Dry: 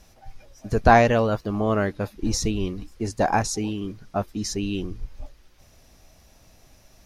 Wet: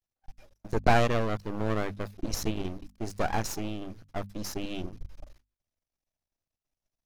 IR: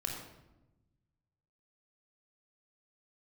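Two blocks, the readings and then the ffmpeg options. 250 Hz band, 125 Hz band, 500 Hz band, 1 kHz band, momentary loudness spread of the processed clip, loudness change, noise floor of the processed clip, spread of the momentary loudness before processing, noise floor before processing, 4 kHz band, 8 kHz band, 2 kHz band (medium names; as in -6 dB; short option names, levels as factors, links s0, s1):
-8.0 dB, -6.5 dB, -8.5 dB, -8.5 dB, 15 LU, -8.0 dB, under -85 dBFS, 15 LU, -55 dBFS, -5.5 dB, -8.5 dB, -7.5 dB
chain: -af "agate=range=0.0316:threshold=0.00562:ratio=16:detection=peak,aeval=exprs='max(val(0),0)':c=same,bandreject=f=50:t=h:w=6,bandreject=f=100:t=h:w=6,bandreject=f=150:t=h:w=6,bandreject=f=200:t=h:w=6,bandreject=f=250:t=h:w=6,volume=0.708"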